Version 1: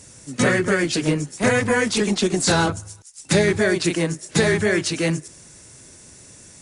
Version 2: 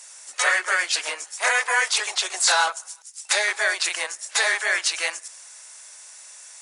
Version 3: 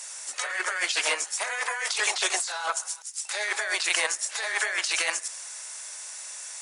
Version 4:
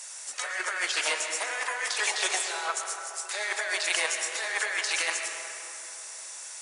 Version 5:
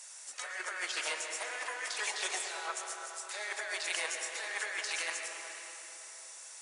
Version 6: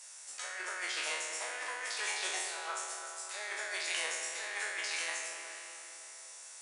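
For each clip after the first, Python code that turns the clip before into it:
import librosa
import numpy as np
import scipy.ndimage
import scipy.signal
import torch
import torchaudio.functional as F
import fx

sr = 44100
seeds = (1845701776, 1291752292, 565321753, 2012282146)

y1 = scipy.signal.sosfilt(scipy.signal.cheby2(4, 60, 220.0, 'highpass', fs=sr, output='sos'), x)
y1 = y1 * librosa.db_to_amplitude(2.5)
y2 = fx.over_compress(y1, sr, threshold_db=-28.0, ratio=-1.0)
y3 = fx.rev_freeverb(y2, sr, rt60_s=3.4, hf_ratio=0.45, predelay_ms=85, drr_db=4.5)
y3 = y3 * librosa.db_to_amplitude(-2.5)
y4 = fx.echo_opening(y3, sr, ms=113, hz=400, octaves=1, feedback_pct=70, wet_db=-6)
y4 = y4 * librosa.db_to_amplitude(-8.0)
y5 = fx.spec_trails(y4, sr, decay_s=0.86)
y5 = y5 * librosa.db_to_amplitude(-3.5)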